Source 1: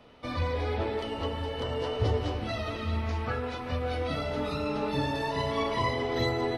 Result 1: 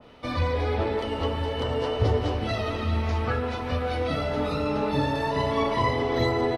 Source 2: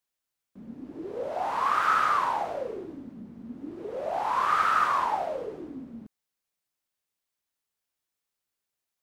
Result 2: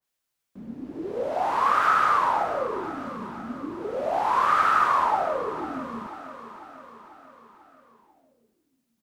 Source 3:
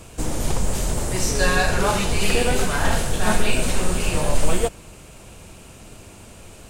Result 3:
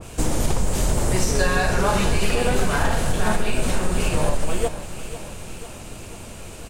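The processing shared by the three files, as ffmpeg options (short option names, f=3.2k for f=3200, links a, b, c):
-filter_complex "[0:a]acompressor=threshold=-19dB:ratio=6,asplit=2[a][b];[b]aecho=0:1:494|988|1482|1976|2470|2964:0.211|0.12|0.0687|0.0391|0.0223|0.0127[c];[a][c]amix=inputs=2:normalize=0,adynamicequalizer=threshold=0.0112:dfrequency=2000:dqfactor=0.7:tfrequency=2000:tqfactor=0.7:attack=5:release=100:ratio=0.375:range=2:mode=cutabove:tftype=highshelf,volume=4.5dB"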